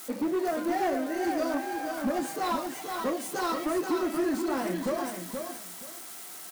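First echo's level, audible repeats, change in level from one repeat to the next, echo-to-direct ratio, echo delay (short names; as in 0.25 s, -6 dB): -6.0 dB, 2, -13.5 dB, -6.0 dB, 0.477 s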